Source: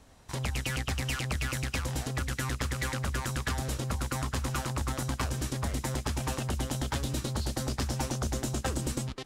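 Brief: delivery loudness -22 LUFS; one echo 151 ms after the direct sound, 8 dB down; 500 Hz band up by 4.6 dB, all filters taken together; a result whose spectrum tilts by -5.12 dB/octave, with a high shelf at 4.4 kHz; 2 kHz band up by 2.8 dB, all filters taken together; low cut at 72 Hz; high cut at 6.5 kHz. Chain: high-pass 72 Hz; low-pass 6.5 kHz; peaking EQ 500 Hz +5.5 dB; peaking EQ 2 kHz +4 dB; treble shelf 4.4 kHz -4 dB; delay 151 ms -8 dB; trim +10 dB

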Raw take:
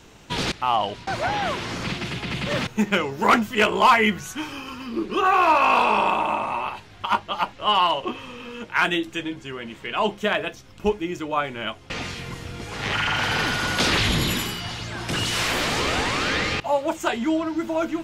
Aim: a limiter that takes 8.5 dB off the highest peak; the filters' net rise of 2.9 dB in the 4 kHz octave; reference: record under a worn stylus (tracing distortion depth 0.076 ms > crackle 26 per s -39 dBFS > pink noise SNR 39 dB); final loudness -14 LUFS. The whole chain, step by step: peaking EQ 4 kHz +4 dB; peak limiter -15.5 dBFS; tracing distortion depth 0.076 ms; crackle 26 per s -39 dBFS; pink noise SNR 39 dB; trim +11.5 dB

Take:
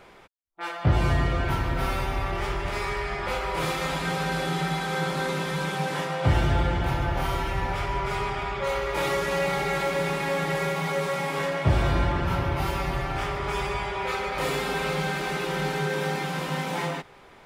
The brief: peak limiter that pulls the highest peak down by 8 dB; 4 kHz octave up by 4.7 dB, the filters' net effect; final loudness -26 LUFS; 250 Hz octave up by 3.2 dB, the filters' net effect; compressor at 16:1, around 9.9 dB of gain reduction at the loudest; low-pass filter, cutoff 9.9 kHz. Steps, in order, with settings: low-pass 9.9 kHz; peaking EQ 250 Hz +5.5 dB; peaking EQ 4 kHz +6 dB; compression 16:1, threshold -24 dBFS; trim +5.5 dB; peak limiter -17 dBFS

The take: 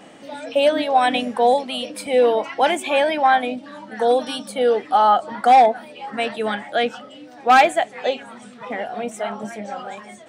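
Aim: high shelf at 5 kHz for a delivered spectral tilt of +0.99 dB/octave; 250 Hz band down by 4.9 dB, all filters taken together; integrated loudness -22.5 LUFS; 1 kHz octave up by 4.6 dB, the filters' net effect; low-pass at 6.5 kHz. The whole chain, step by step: low-pass 6.5 kHz; peaking EQ 250 Hz -6 dB; peaking EQ 1 kHz +7 dB; treble shelf 5 kHz +7 dB; trim -7 dB

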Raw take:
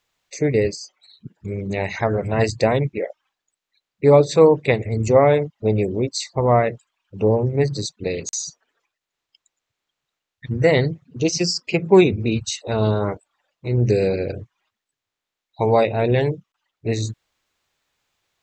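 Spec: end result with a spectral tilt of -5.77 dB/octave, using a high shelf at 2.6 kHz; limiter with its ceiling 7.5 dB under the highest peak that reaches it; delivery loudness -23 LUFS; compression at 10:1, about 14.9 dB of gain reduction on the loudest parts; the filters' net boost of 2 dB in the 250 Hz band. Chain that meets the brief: peaking EQ 250 Hz +3 dB; treble shelf 2.6 kHz -5.5 dB; compression 10:1, threshold -22 dBFS; trim +6.5 dB; peak limiter -12 dBFS

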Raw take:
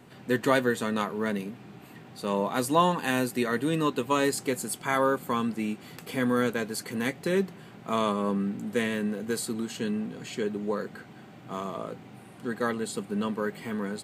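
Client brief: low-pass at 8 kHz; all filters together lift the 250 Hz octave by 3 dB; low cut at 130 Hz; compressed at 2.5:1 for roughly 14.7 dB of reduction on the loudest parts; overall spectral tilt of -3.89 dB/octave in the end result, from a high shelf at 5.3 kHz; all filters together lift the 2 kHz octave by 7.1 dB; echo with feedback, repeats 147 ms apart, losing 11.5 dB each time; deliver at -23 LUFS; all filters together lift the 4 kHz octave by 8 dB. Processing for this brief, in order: high-pass 130 Hz; low-pass 8 kHz; peaking EQ 250 Hz +4 dB; peaking EQ 2 kHz +7 dB; peaking EQ 4 kHz +5 dB; treble shelf 5.3 kHz +7 dB; compression 2.5:1, threshold -38 dBFS; feedback delay 147 ms, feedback 27%, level -11.5 dB; trim +13.5 dB

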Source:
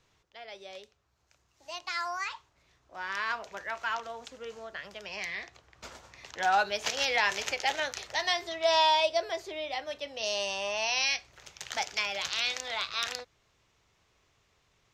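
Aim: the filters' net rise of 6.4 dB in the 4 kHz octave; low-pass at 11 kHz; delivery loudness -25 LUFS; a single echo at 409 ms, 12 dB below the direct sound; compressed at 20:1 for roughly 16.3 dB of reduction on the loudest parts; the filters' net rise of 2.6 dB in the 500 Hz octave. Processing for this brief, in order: low-pass 11 kHz; peaking EQ 500 Hz +3.5 dB; peaking EQ 4 kHz +8 dB; compression 20:1, threshold -33 dBFS; delay 409 ms -12 dB; trim +12.5 dB

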